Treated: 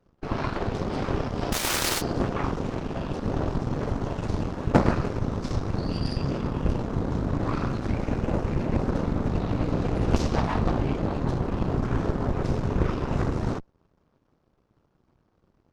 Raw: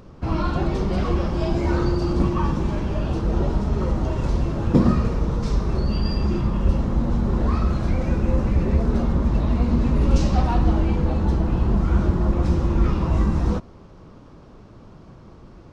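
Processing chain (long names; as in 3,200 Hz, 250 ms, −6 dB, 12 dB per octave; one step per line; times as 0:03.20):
0:01.52–0:02.00: spectral envelope flattened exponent 0.3
harmonic generator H 3 −10 dB, 8 −19 dB, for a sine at −4 dBFS
level +1 dB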